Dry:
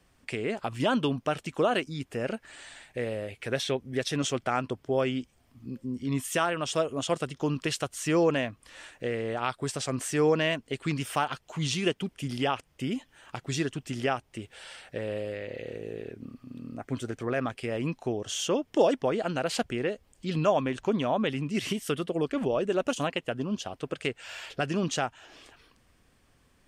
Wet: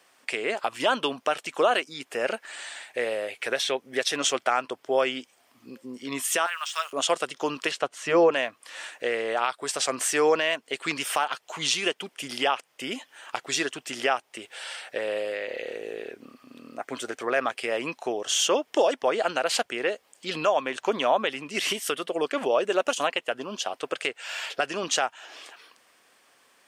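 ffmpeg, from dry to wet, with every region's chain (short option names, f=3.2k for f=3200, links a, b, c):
-filter_complex "[0:a]asettb=1/sr,asplit=3[a][b][c];[a]atrim=end=6.464[d];[b]atrim=start=6.46:end=6.93,asetpts=PTS-STARTPTS,afade=t=in:d=0.004:c=qsin,afade=t=out:st=0.466:d=0.004:c=qsin,deesser=0.9,highpass=f=1.1k:w=0.5412,highpass=f=1.1k:w=1.3066,acrusher=bits=8:mix=0:aa=0.5[e];[c]atrim=start=6.926[f];[d][e]acrossfade=d=0.004:c1=hsin:c2=qsin[g];[g][f]acrossfade=d=0.004:c1=qsin:c2=hsin,asettb=1/sr,asplit=3[h][i][j];[h]atrim=end=7.714[k];[i]atrim=start=7.71:end=8.32,asetpts=PTS-STARTPTS,afade=t=in:d=0.004:c=qsin,afade=t=out:st=0.606:d=0.004:c=qsin,highpass=190,aemphasis=mode=reproduction:type=riaa,bandreject=f=310:w=8.8[l];[j]atrim=start=8.316[m];[k][l]acrossfade=d=0.004:c1=hsin:c2=qsin[n];[n][m]acrossfade=d=0.004:c1=qsin:c2=hsin,highpass=560,alimiter=limit=-20dB:level=0:latency=1:release=390,volume=8.5dB"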